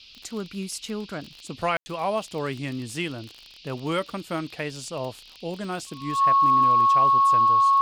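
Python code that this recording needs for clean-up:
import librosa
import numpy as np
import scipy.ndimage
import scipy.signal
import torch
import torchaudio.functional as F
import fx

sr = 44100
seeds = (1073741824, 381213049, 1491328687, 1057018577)

y = fx.fix_declick_ar(x, sr, threshold=6.5)
y = fx.notch(y, sr, hz=1100.0, q=30.0)
y = fx.fix_ambience(y, sr, seeds[0], print_start_s=3.16, print_end_s=3.66, start_s=1.77, end_s=1.86)
y = fx.noise_reduce(y, sr, print_start_s=3.16, print_end_s=3.66, reduce_db=20.0)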